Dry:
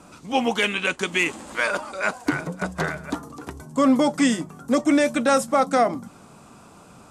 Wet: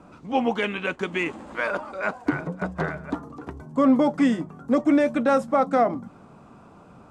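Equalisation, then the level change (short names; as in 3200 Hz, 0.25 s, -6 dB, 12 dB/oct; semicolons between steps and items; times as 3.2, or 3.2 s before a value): high shelf 2600 Hz -11.5 dB; high shelf 6400 Hz -11.5 dB; 0.0 dB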